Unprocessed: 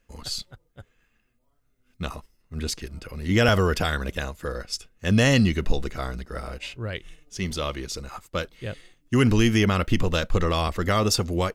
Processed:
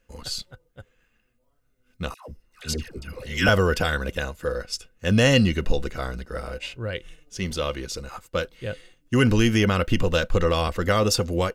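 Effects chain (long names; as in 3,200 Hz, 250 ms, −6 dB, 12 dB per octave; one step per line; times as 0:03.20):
hollow resonant body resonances 510/1,500/2,800 Hz, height 10 dB, ringing for 95 ms
0:02.14–0:03.47: all-pass dispersion lows, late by 143 ms, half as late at 800 Hz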